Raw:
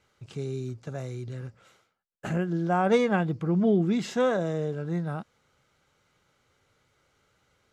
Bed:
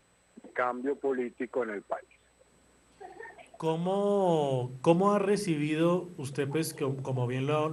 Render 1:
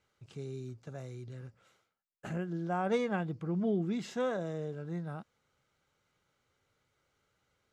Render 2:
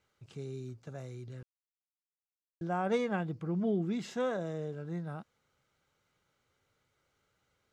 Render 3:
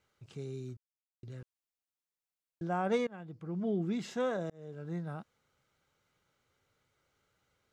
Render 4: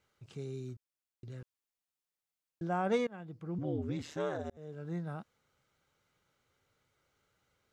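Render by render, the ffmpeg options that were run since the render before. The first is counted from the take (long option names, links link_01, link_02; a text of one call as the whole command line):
ffmpeg -i in.wav -af "volume=-8.5dB" out.wav
ffmpeg -i in.wav -filter_complex "[0:a]asplit=3[link_01][link_02][link_03];[link_01]atrim=end=1.43,asetpts=PTS-STARTPTS,afade=type=out:start_time=1.426:duration=0.004:curve=hsin[link_04];[link_02]atrim=start=1.43:end=2.61,asetpts=PTS-STARTPTS,volume=0[link_05];[link_03]atrim=start=2.61,asetpts=PTS-STARTPTS,afade=type=in:duration=0.004:curve=hsin[link_06];[link_04][link_05][link_06]concat=n=3:v=0:a=1" out.wav
ffmpeg -i in.wav -filter_complex "[0:a]asplit=5[link_01][link_02][link_03][link_04][link_05];[link_01]atrim=end=0.77,asetpts=PTS-STARTPTS,afade=type=out:start_time=0.766:duration=0.004:curve=hsin[link_06];[link_02]atrim=start=0.77:end=1.23,asetpts=PTS-STARTPTS,volume=0[link_07];[link_03]atrim=start=1.23:end=3.07,asetpts=PTS-STARTPTS,afade=type=in:duration=0.004:curve=hsin,afade=type=out:start_time=1.836:duration=0.004:curve=hsin:silence=0.0944061[link_08];[link_04]atrim=start=3.07:end=4.5,asetpts=PTS-STARTPTS,afade=type=in:duration=0.82:silence=0.0944061,afade=type=out:start_time=1.426:duration=0.004:curve=hsin[link_09];[link_05]atrim=start=4.5,asetpts=PTS-STARTPTS,afade=type=in:duration=0.4[link_10];[link_06][link_07][link_08][link_09][link_10]concat=n=5:v=0:a=1" out.wav
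ffmpeg -i in.wav -filter_complex "[0:a]asettb=1/sr,asplit=3[link_01][link_02][link_03];[link_01]atrim=end=3.584[link_04];[link_02]atrim=start=3.58:end=4.57,asetpts=PTS-STARTPTS,afade=type=in:duration=0.004:curve=qsin,afade=type=out:start_time=0.986:duration=0.004:curve=qsin,aeval=exprs='val(0)*sin(2*PI*75*n/s)':channel_layout=same[link_05];[link_03]atrim=start=4.566[link_06];[link_04][link_05]acrossfade=duration=0.004:curve1=hsin:curve2=qsin[link_07];[link_07][link_06]acrossfade=duration=0.004:curve1=qsin:curve2=hsin" out.wav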